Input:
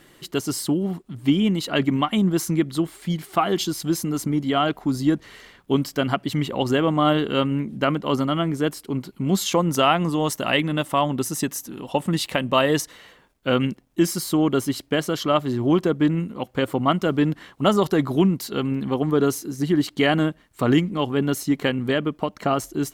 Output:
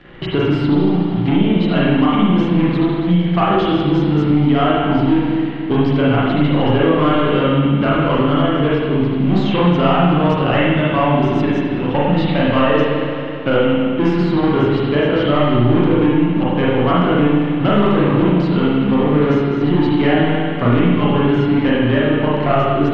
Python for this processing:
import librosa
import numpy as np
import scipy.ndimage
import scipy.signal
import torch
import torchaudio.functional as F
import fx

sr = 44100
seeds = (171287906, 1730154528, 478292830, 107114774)

y = fx.leveller(x, sr, passes=3)
y = scipy.signal.sosfilt(scipy.signal.butter(4, 3300.0, 'lowpass', fs=sr, output='sos'), y)
y = fx.low_shelf(y, sr, hz=85.0, db=9.5)
y = fx.rev_spring(y, sr, rt60_s=1.5, pass_ms=(34, 50), chirp_ms=45, drr_db=-8.5)
y = fx.band_squash(y, sr, depth_pct=70)
y = F.gain(torch.from_numpy(y), -11.0).numpy()